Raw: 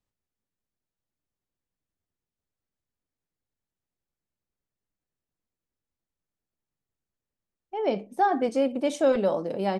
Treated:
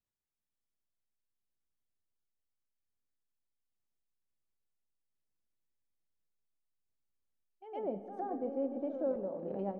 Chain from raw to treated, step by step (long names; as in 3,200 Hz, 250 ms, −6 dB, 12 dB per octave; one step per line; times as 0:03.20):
treble cut that deepens with the level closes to 670 Hz, closed at −24 dBFS
sample-and-hold tremolo
backwards echo 112 ms −10 dB
on a send at −11.5 dB: convolution reverb RT60 4.1 s, pre-delay 30 ms
on the sum: level −7.5 dB